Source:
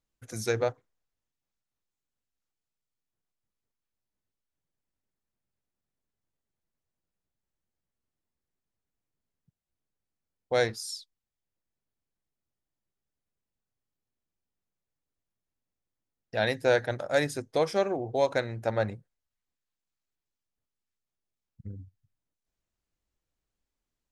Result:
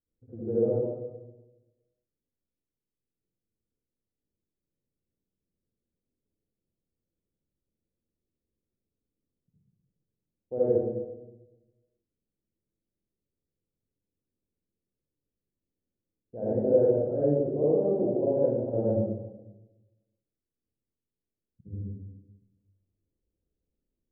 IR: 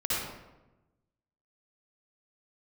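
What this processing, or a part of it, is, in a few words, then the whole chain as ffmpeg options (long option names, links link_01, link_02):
next room: -filter_complex "[0:a]lowpass=frequency=450:width=0.5412,lowpass=frequency=450:width=1.3066,lowshelf=frequency=200:gain=-11.5,bandreject=frequency=138:width_type=h:width=4,bandreject=frequency=276:width_type=h:width=4,bandreject=frequency=414:width_type=h:width=4,bandreject=frequency=552:width_type=h:width=4,bandreject=frequency=690:width_type=h:width=4,bandreject=frequency=828:width_type=h:width=4,bandreject=frequency=966:width_type=h:width=4,bandreject=frequency=1104:width_type=h:width=4,bandreject=frequency=1242:width_type=h:width=4,bandreject=frequency=1380:width_type=h:width=4,bandreject=frequency=1518:width_type=h:width=4,bandreject=frequency=1656:width_type=h:width=4,bandreject=frequency=1794:width_type=h:width=4,bandreject=frequency=1932:width_type=h:width=4,bandreject=frequency=2070:width_type=h:width=4,bandreject=frequency=2208:width_type=h:width=4,bandreject=frequency=2346:width_type=h:width=4,bandreject=frequency=2484:width_type=h:width=4,bandreject=frequency=2622:width_type=h:width=4,bandreject=frequency=2760:width_type=h:width=4,bandreject=frequency=2898:width_type=h:width=4,bandreject=frequency=3036:width_type=h:width=4,bandreject=frequency=3174:width_type=h:width=4,bandreject=frequency=3312:width_type=h:width=4,bandreject=frequency=3450:width_type=h:width=4,bandreject=frequency=3588:width_type=h:width=4,bandreject=frequency=3726:width_type=h:width=4,bandreject=frequency=3864:width_type=h:width=4,bandreject=frequency=4002:width_type=h:width=4[link_01];[1:a]atrim=start_sample=2205[link_02];[link_01][link_02]afir=irnorm=-1:irlink=0,volume=2dB"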